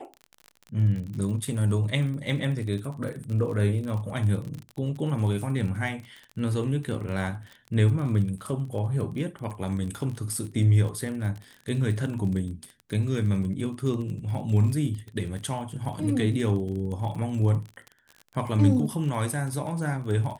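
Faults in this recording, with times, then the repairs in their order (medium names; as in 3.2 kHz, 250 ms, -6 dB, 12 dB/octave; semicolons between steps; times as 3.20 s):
crackle 33 per s -33 dBFS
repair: de-click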